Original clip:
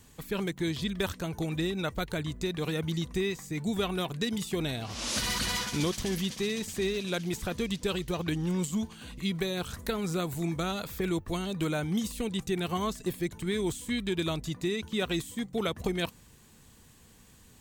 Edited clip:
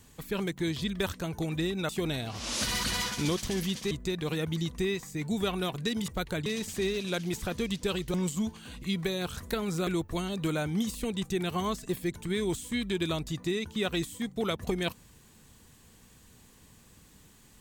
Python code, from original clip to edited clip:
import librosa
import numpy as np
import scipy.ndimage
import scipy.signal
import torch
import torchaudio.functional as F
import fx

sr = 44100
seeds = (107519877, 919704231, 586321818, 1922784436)

y = fx.edit(x, sr, fx.swap(start_s=1.89, length_s=0.38, other_s=4.44, other_length_s=2.02),
    fx.cut(start_s=8.14, length_s=0.36),
    fx.cut(start_s=10.23, length_s=0.81), tone=tone)